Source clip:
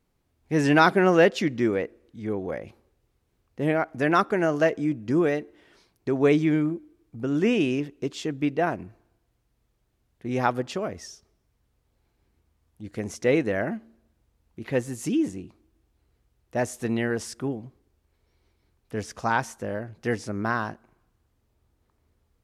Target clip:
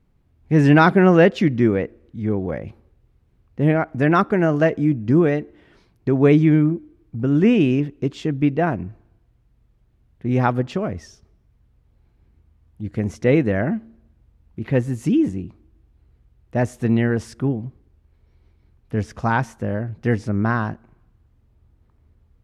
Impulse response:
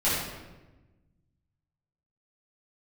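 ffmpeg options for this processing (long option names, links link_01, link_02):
-af "bass=frequency=250:gain=10,treble=frequency=4000:gain=-9,volume=3dB"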